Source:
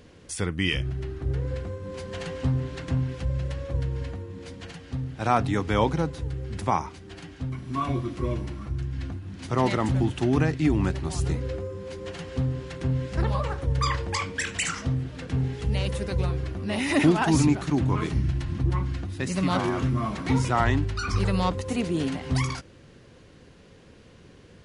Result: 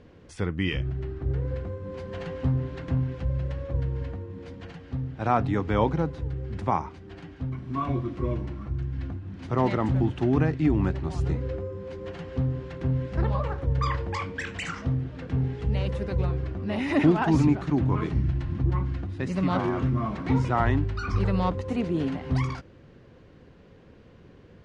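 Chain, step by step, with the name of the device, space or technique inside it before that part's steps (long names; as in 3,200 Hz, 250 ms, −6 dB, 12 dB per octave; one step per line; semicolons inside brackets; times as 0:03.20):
through cloth (low-pass filter 6,800 Hz 12 dB per octave; high-shelf EQ 3,100 Hz −13.5 dB)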